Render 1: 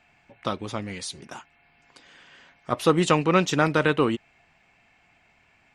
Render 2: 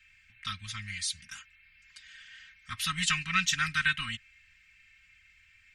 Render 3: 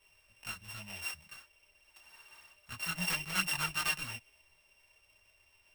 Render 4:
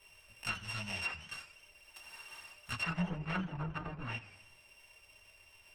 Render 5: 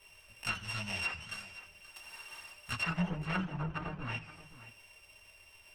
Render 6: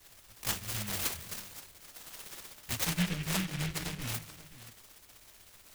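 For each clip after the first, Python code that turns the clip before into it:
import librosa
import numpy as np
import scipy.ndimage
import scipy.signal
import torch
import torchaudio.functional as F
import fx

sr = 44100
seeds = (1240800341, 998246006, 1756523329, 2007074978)

y1 = scipy.signal.sosfilt(scipy.signal.cheby1(3, 1.0, [130.0, 1700.0], 'bandstop', fs=sr, output='sos'), x)
y1 = y1 + 0.87 * np.pad(y1, (int(3.8 * sr / 1000.0), 0))[:len(y1)]
y2 = np.r_[np.sort(y1[:len(y1) // 16 * 16].reshape(-1, 16), axis=1).ravel(), y1[len(y1) // 16 * 16:]]
y2 = fx.detune_double(y2, sr, cents=10)
y2 = y2 * 10.0 ** (-2.0 / 20.0)
y3 = fx.env_lowpass_down(y2, sr, base_hz=470.0, full_db=-30.0)
y3 = fx.echo_warbled(y3, sr, ms=86, feedback_pct=56, rate_hz=2.8, cents=194, wet_db=-16.5)
y3 = y3 * 10.0 ** (6.0 / 20.0)
y4 = y3 + 10.0 ** (-15.5 / 20.0) * np.pad(y3, (int(525 * sr / 1000.0), 0))[:len(y3)]
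y4 = y4 * 10.0 ** (2.0 / 20.0)
y5 = fx.noise_mod_delay(y4, sr, seeds[0], noise_hz=2200.0, depth_ms=0.33)
y5 = y5 * 10.0 ** (2.0 / 20.0)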